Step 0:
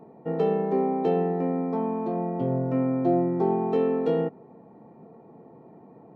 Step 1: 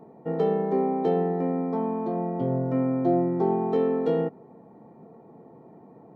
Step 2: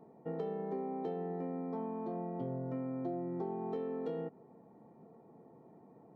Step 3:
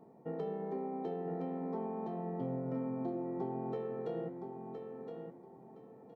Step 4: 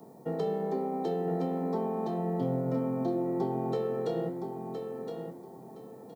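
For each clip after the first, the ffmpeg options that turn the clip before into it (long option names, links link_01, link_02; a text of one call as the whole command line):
ffmpeg -i in.wav -af "bandreject=frequency=2600:width=7.3" out.wav
ffmpeg -i in.wav -af "acompressor=threshold=-26dB:ratio=6,volume=-9dB" out.wav
ffmpeg -i in.wav -af "flanger=delay=9.5:depth=7.4:regen=-85:speed=1.1:shape=triangular,aecho=1:1:1016|2032|3048:0.473|0.118|0.0296,volume=4dB" out.wav
ffmpeg -i in.wav -filter_complex "[0:a]acrossover=split=250|540|900[link_01][link_02][link_03][link_04];[link_04]aexciter=amount=3.6:drive=6.2:freq=3500[link_05];[link_01][link_02][link_03][link_05]amix=inputs=4:normalize=0,asplit=2[link_06][link_07];[link_07]adelay=29,volume=-13.5dB[link_08];[link_06][link_08]amix=inputs=2:normalize=0,volume=7.5dB" out.wav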